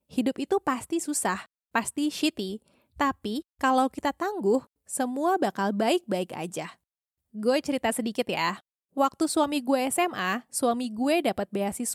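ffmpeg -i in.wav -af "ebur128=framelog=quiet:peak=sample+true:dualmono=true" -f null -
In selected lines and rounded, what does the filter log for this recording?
Integrated loudness:
  I:         -24.5 LUFS
  Threshold: -34.7 LUFS
Loudness range:
  LRA:         2.4 LU
  Threshold: -44.9 LUFS
  LRA low:   -26.1 LUFS
  LRA high:  -23.7 LUFS
Sample peak:
  Peak:      -10.3 dBFS
True peak:
  Peak:      -10.3 dBFS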